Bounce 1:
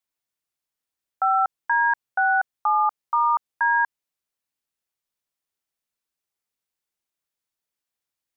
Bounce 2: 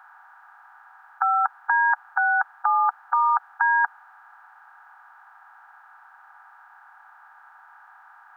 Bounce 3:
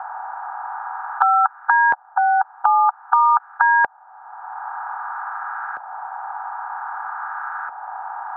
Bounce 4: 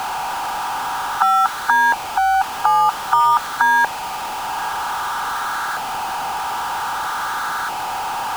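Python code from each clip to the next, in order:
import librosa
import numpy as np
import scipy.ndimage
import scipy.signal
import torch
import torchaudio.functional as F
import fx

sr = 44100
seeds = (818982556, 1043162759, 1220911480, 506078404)

y1 = fx.bin_compress(x, sr, power=0.4)
y1 = scipy.signal.sosfilt(scipy.signal.butter(6, 780.0, 'highpass', fs=sr, output='sos'), y1)
y2 = fx.filter_lfo_lowpass(y1, sr, shape='saw_up', hz=0.52, low_hz=650.0, high_hz=1500.0, q=1.5)
y2 = fx.band_squash(y2, sr, depth_pct=70)
y2 = y2 * 10.0 ** (4.5 / 20.0)
y3 = y2 + 0.5 * 10.0 ** (-21.0 / 20.0) * np.sign(y2)
y3 = y3 + 10.0 ** (-20.5 / 20.0) * np.pad(y3, (int(888 * sr / 1000.0), 0))[:len(y3)]
y3 = y3 * 10.0 ** (-1.0 / 20.0)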